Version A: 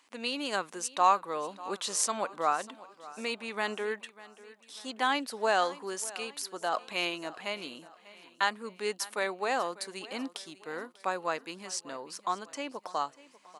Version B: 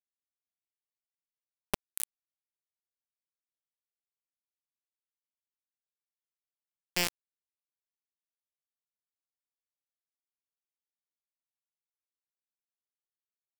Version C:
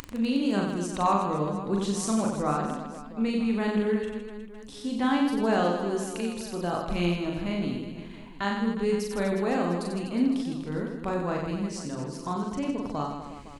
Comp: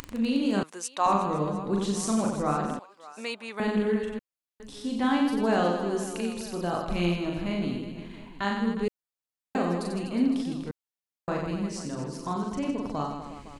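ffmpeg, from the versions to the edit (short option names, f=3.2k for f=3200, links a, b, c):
-filter_complex "[0:a]asplit=2[a][b];[1:a]asplit=3[c][d][e];[2:a]asplit=6[f][g][h][i][j][k];[f]atrim=end=0.632[l];[a]atrim=start=0.628:end=1.062[m];[g]atrim=start=1.058:end=2.792[n];[b]atrim=start=2.788:end=3.602[o];[h]atrim=start=3.598:end=4.192[p];[c]atrim=start=4.188:end=4.602[q];[i]atrim=start=4.598:end=8.882[r];[d]atrim=start=8.878:end=9.552[s];[j]atrim=start=9.548:end=10.712[t];[e]atrim=start=10.708:end=11.282[u];[k]atrim=start=11.278[v];[l][m]acrossfade=d=0.004:c1=hsin:c2=hsin[w];[w][n]acrossfade=d=0.004:c1=hsin:c2=hsin[x];[x][o]acrossfade=d=0.004:c1=hsin:c2=hsin[y];[y][p]acrossfade=d=0.004:c1=hsin:c2=hsin[z];[z][q]acrossfade=d=0.004:c1=hsin:c2=hsin[aa];[aa][r]acrossfade=d=0.004:c1=hsin:c2=hsin[ab];[ab][s]acrossfade=d=0.004:c1=hsin:c2=hsin[ac];[ac][t]acrossfade=d=0.004:c1=hsin:c2=hsin[ad];[ad][u]acrossfade=d=0.004:c1=hsin:c2=hsin[ae];[ae][v]acrossfade=d=0.004:c1=hsin:c2=hsin"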